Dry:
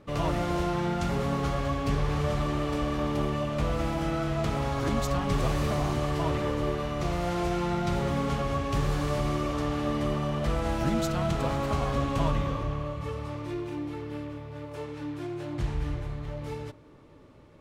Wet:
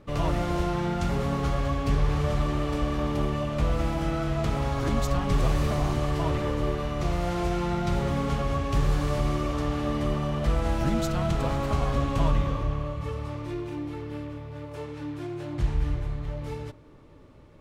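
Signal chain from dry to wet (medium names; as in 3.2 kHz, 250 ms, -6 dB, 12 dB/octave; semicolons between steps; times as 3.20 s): bass shelf 66 Hz +9 dB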